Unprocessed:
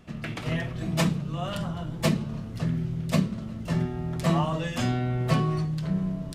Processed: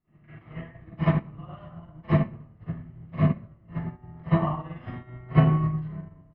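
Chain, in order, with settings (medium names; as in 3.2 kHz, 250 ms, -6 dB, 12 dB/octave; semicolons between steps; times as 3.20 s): low-pass 2.3 kHz 24 dB/octave; comb 1 ms, depth 32%; reverberation RT60 0.75 s, pre-delay 36 ms, DRR -11 dB; upward expansion 2.5:1, over -24 dBFS; trim -5.5 dB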